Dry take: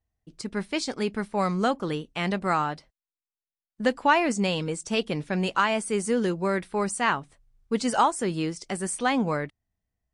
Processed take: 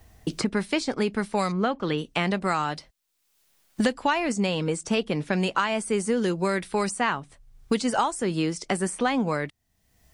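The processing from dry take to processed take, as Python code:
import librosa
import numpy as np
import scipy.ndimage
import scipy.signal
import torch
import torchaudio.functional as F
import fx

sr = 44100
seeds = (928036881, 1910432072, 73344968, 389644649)

y = fx.lowpass(x, sr, hz=fx.line((1.51, 1400.0), (1.97, 3100.0)), slope=12, at=(1.51, 1.97), fade=0.02)
y = fx.band_squash(y, sr, depth_pct=100)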